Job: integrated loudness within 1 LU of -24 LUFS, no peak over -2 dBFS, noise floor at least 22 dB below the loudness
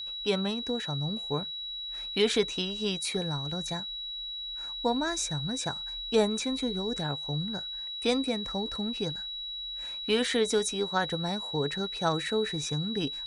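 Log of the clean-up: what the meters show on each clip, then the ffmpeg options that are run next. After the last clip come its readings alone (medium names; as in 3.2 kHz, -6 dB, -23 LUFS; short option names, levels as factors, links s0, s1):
steady tone 3.9 kHz; tone level -35 dBFS; loudness -30.5 LUFS; peak level -11.0 dBFS; loudness target -24.0 LUFS
-> -af "bandreject=f=3900:w=30"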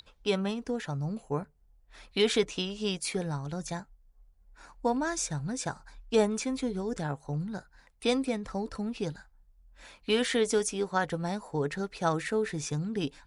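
steady tone not found; loudness -31.5 LUFS; peak level -11.0 dBFS; loudness target -24.0 LUFS
-> -af "volume=2.37"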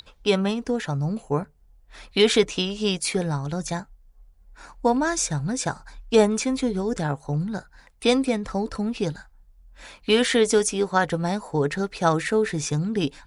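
loudness -24.0 LUFS; peak level -3.5 dBFS; noise floor -56 dBFS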